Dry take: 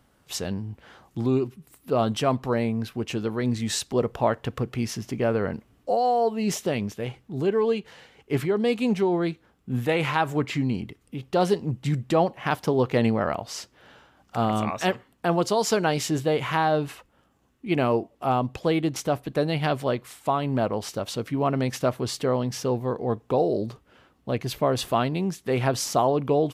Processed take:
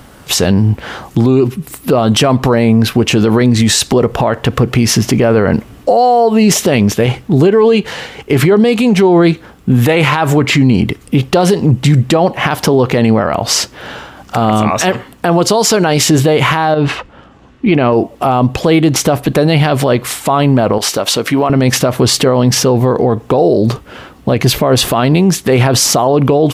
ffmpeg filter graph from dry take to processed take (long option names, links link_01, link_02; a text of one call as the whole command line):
ffmpeg -i in.wav -filter_complex "[0:a]asettb=1/sr,asplit=3[link_01][link_02][link_03];[link_01]atrim=end=16.744[link_04];[link_02]atrim=start=16.74:end=17.93,asetpts=PTS-STARTPTS,afade=type=in:duration=0.004:curve=qsin,afade=type=out:start_time=1.186:duration=0.004:curve=qsin,lowpass=4100,acompressor=threshold=-29dB:ratio=4:attack=3.2:release=140:knee=1:detection=peak[link_05];[link_03]atrim=start=17.926[link_06];[link_04][link_05]acrossfade=duration=0.004:curve1=hsin:curve2=qsin[link_07];[link_07][link_06]acrossfade=duration=0.004:curve1=qsin:curve2=hsin,asettb=1/sr,asplit=3[link_08][link_09][link_10];[link_08]atrim=end=20.784[link_11];[link_09]atrim=start=20.78:end=21.5,asetpts=PTS-STARTPTS,afade=type=in:duration=0.004:curve=qsin,afade=type=out:start_time=0.716:duration=0.004:curve=qsin,highpass=frequency=420:poles=1,acompressor=threshold=-35dB:ratio=2:attack=3.2:release=140:knee=1:detection=peak[link_12];[link_10]atrim=start=21.496[link_13];[link_11][link_12]acrossfade=duration=0.004:curve1=hsin:curve2=qsin[link_14];[link_14][link_13]acrossfade=duration=0.004:curve1=qsin:curve2=hsin,acompressor=threshold=-24dB:ratio=6,alimiter=level_in=25.5dB:limit=-1dB:release=50:level=0:latency=1,volume=-1dB" out.wav